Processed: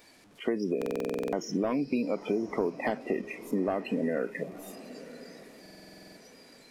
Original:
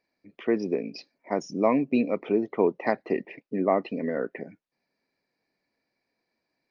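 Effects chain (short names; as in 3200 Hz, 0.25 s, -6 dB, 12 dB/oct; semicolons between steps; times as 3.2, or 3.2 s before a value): delta modulation 64 kbps, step -39.5 dBFS; spectral noise reduction 18 dB; in parallel at +1.5 dB: limiter -22 dBFS, peak gain reduction 11 dB; on the sum: compressor, threshold -24 dBFS, peak gain reduction 10 dB; on a send: diffused feedback echo 0.976 s, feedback 41%, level -15.5 dB; on the sum: stuck buffer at 0.77/5.61, samples 2048, times 11; gain -1.5 dB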